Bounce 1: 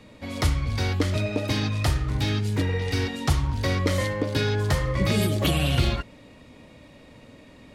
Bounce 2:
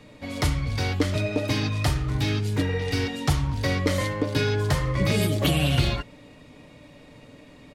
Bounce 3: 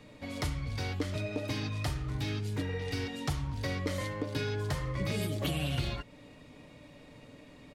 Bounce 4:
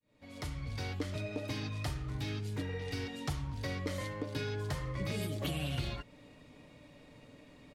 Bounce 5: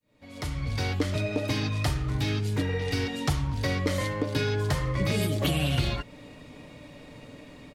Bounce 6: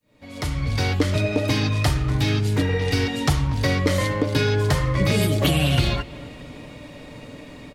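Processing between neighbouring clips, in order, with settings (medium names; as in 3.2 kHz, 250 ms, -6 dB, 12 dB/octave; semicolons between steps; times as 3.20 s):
comb 6.8 ms, depth 32%
compression 1.5:1, threshold -35 dBFS, peak gain reduction 7 dB; trim -4.5 dB
fade-in on the opening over 0.67 s; trim -3.5 dB
level rider gain up to 6 dB; trim +4 dB
feedback echo behind a low-pass 238 ms, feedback 58%, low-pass 3.2 kHz, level -19.5 dB; trim +6.5 dB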